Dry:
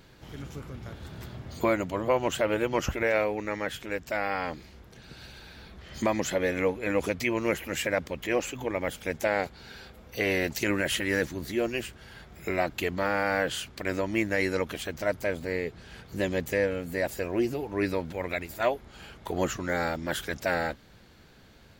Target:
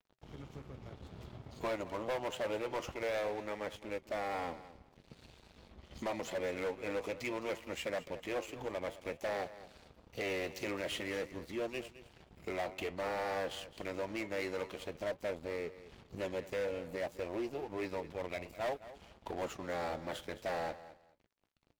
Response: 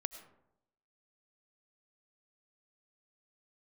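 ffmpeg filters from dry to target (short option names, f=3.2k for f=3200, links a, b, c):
-filter_complex "[0:a]lowpass=f=2.1k:p=1,equalizer=f=1.6k:t=o:w=0.47:g=-11.5,acrossover=split=460|1000[a][b][c];[a]acompressor=threshold=-41dB:ratio=5[d];[d][b][c]amix=inputs=3:normalize=0,aeval=exprs='sgn(val(0))*max(abs(val(0))-0.00335,0)':c=same,flanger=delay=3.4:depth=7.5:regen=-78:speed=0.52:shape=sinusoidal,asoftclip=type=hard:threshold=-35dB,aecho=1:1:213|426:0.168|0.0336,volume=2.5dB"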